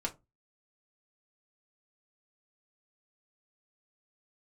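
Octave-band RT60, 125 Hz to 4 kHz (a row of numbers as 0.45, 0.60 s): 0.40, 0.30, 0.25, 0.20, 0.15, 0.15 s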